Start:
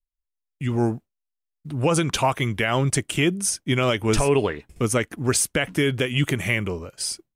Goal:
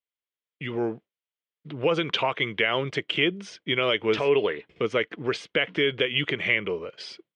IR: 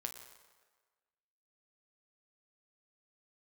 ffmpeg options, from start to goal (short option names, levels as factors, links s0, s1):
-filter_complex "[0:a]asplit=2[s0][s1];[s1]acompressor=threshold=0.0398:ratio=6,volume=1.33[s2];[s0][s2]amix=inputs=2:normalize=0,highpass=220,equalizer=f=250:t=q:w=4:g=-6,equalizer=f=460:t=q:w=4:g=6,equalizer=f=790:t=q:w=4:g=-4,equalizer=f=2100:t=q:w=4:g=5,equalizer=f=3200:t=q:w=4:g=7,lowpass=f=3900:w=0.5412,lowpass=f=3900:w=1.3066,volume=0.473"